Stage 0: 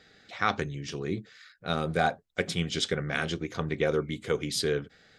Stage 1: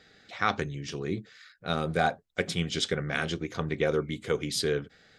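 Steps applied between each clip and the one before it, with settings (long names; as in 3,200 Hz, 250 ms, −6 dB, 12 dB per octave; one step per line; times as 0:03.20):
no processing that can be heard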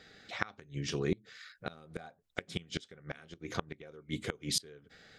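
gate with flip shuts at −19 dBFS, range −26 dB
level +1 dB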